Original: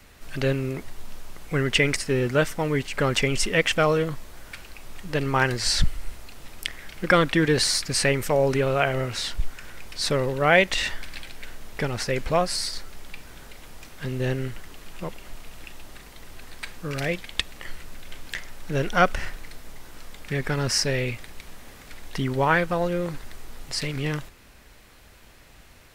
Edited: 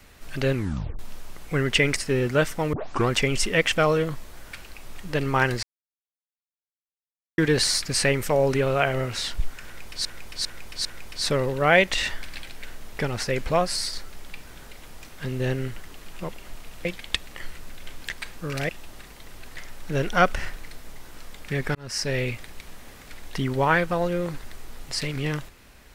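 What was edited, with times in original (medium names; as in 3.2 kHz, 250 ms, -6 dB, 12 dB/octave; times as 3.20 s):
0.53 s: tape stop 0.46 s
2.73 s: tape start 0.36 s
5.63–7.38 s: mute
9.65–10.05 s: loop, 4 plays
15.65–16.53 s: swap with 17.10–18.37 s
20.55–20.98 s: fade in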